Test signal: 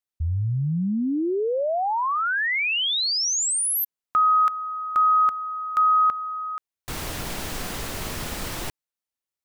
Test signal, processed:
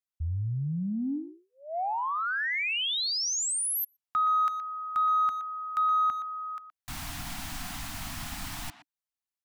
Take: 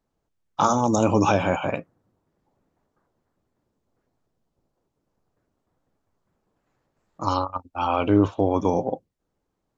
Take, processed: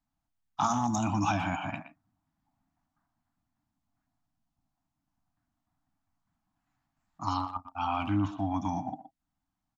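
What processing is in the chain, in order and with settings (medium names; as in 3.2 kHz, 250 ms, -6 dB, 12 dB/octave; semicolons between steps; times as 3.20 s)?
Chebyshev band-stop 290–700 Hz, order 3; in parallel at -8 dB: saturation -17 dBFS; on the sum: speakerphone echo 120 ms, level -11 dB; trim -8.5 dB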